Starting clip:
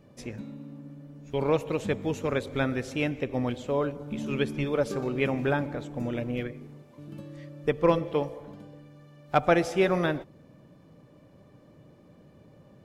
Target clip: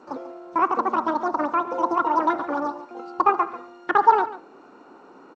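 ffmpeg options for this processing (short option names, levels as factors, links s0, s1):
-filter_complex "[0:a]equalizer=f=1600:w=1.1:g=-4,acrossover=split=740[s0][s1];[s1]acompressor=threshold=0.00251:ratio=4[s2];[s0][s2]amix=inputs=2:normalize=0,asetrate=105840,aresample=44100,highpass=190,equalizer=f=260:t=q:w=4:g=4,equalizer=f=640:t=q:w=4:g=-6,equalizer=f=910:t=q:w=4:g=7,equalizer=f=2000:t=q:w=4:g=-5,equalizer=f=3200:t=q:w=4:g=-5,lowpass=f=4800:w=0.5412,lowpass=f=4800:w=1.3066,asplit=2[s3][s4];[s4]aecho=0:1:141:0.178[s5];[s3][s5]amix=inputs=2:normalize=0,volume=2" -ar 16000 -c:a g722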